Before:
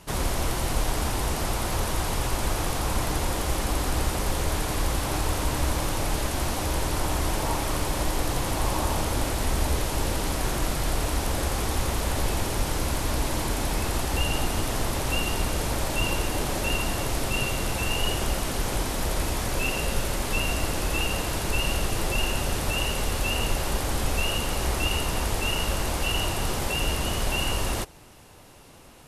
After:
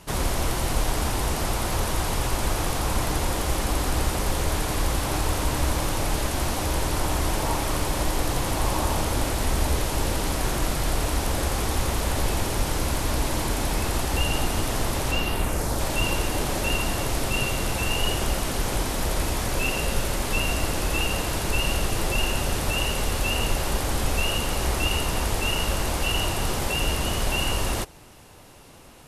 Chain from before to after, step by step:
0:15.10–0:15.79: parametric band 12,000 Hz → 2,100 Hz −9 dB 0.77 octaves
level +1.5 dB

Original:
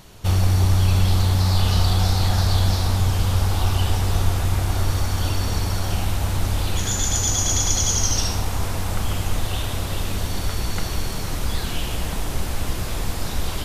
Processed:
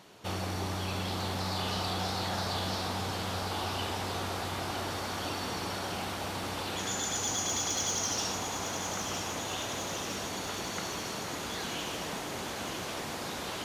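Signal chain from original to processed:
high-pass filter 230 Hz 12 dB per octave
high-shelf EQ 6,600 Hz −10.5 dB
soft clipping −18.5 dBFS, distortion −23 dB
feedback echo with a high-pass in the loop 958 ms, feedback 74%, level −8 dB
level −4.5 dB

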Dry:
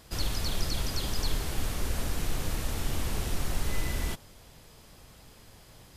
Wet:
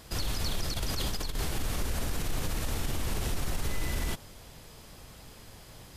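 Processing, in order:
0:00.74–0:01.51: compressor whose output falls as the input rises −32 dBFS, ratio −1
brickwall limiter −25.5 dBFS, peak gain reduction 9.5 dB
level +3.5 dB

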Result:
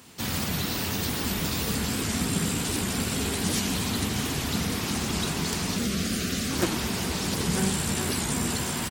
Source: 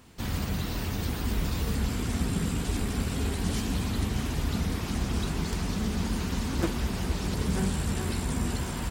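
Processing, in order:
high-pass filter 110 Hz 12 dB per octave
high-shelf EQ 2,600 Hz +8 dB
0:05.77–0:06.51: Butterworth band-reject 920 Hz, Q 2.1
far-end echo of a speakerphone 90 ms, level −7 dB
wow of a warped record 78 rpm, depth 160 cents
level +2.5 dB

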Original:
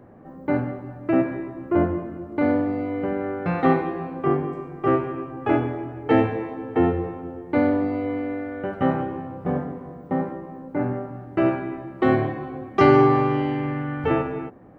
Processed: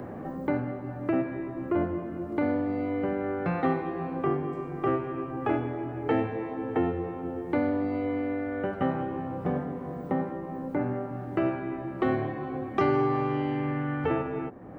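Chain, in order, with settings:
multiband upward and downward compressor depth 70%
level −6 dB

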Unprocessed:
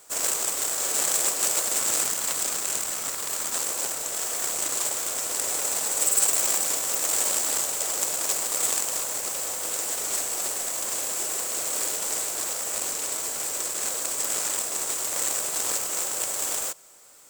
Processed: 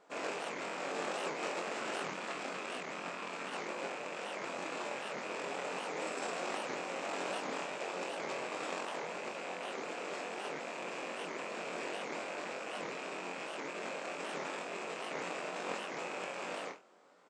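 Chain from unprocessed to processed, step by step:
loose part that buzzes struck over −54 dBFS, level −24 dBFS
pitch-shifted copies added −7 semitones −17 dB
linear-phase brick-wall high-pass 150 Hz
head-to-tape spacing loss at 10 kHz 40 dB
flutter between parallel walls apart 3.8 metres, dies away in 0.24 s
wow of a warped record 78 rpm, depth 250 cents
level −1 dB

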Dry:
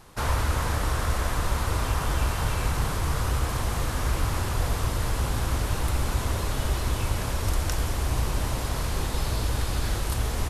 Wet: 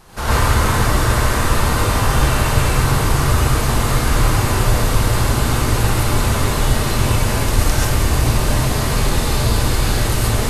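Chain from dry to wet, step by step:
reverb whose tail is shaped and stops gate 160 ms rising, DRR −7.5 dB
level +3.5 dB

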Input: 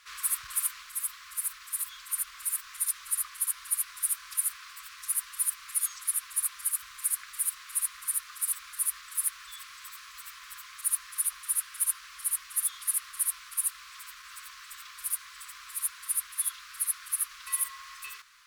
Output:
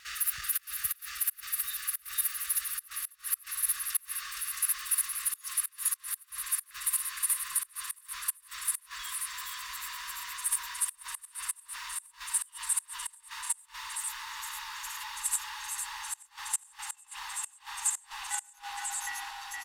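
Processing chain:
gliding playback speed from 115% → 73%
pitch vibrato 1.1 Hz 5.7 cents
comb filter 1.1 ms, depth 32%
brickwall limiter −23.5 dBFS, peak gain reduction 11.5 dB
single-tap delay 468 ms −3.5 dB
gate with flip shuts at −23 dBFS, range −26 dB
in parallel at +2.5 dB: output level in coarse steps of 17 dB

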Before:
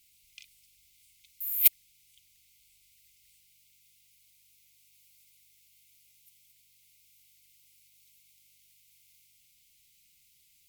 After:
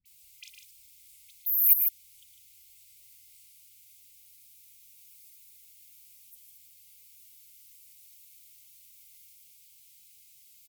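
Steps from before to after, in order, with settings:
high-shelf EQ 5,800 Hz +8.5 dB
all-pass dispersion highs, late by 58 ms, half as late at 1,300 Hz
brickwall limiter −6.5 dBFS, peak gain reduction 8 dB
hard clipping −10.5 dBFS, distortion −18 dB
gate on every frequency bin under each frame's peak −20 dB strong
on a send: loudspeakers that aren't time-aligned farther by 38 metres −10 dB, 52 metres −7 dB

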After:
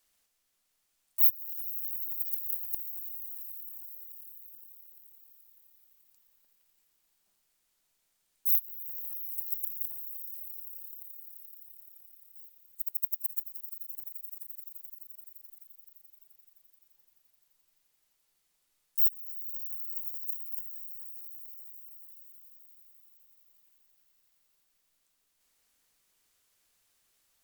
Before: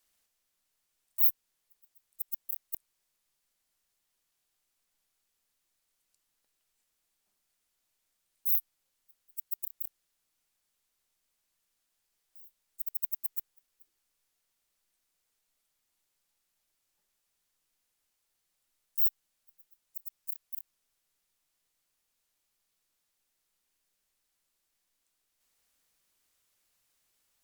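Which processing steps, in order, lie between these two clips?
echo that builds up and dies away 86 ms, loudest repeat 8, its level −16 dB
level +2 dB

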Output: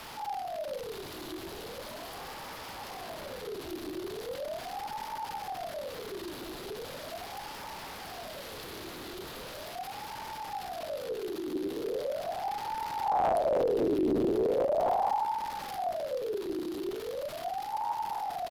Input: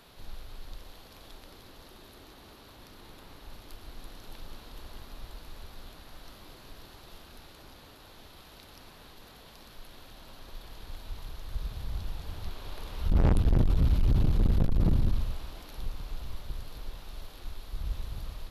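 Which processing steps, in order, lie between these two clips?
single-tap delay 188 ms −24 dB
power curve on the samples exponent 0.5
ring modulator whose carrier an LFO sweeps 610 Hz, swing 45%, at 0.39 Hz
level −4 dB

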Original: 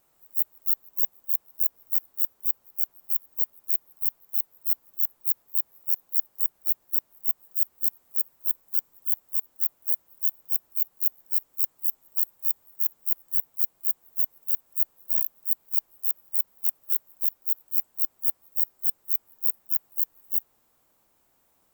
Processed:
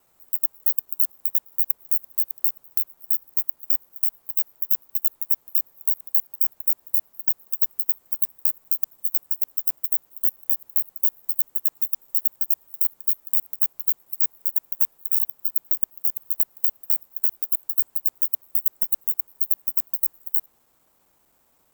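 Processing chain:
reversed piece by piece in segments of 66 ms
level +3.5 dB

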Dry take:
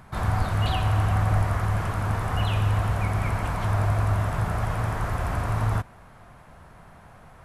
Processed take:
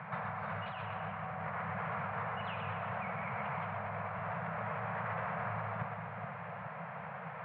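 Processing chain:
elliptic band-pass filter 150–2,400 Hz, stop band 50 dB
parametric band 280 Hz −5.5 dB 1.4 octaves
compressor whose output falls as the input rises −40 dBFS, ratio −1
Chebyshev band-stop filter 200–460 Hz, order 3
on a send: echo with a time of its own for lows and highs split 700 Hz, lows 422 ms, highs 122 ms, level −6.5 dB
on the sum: level +1 dB

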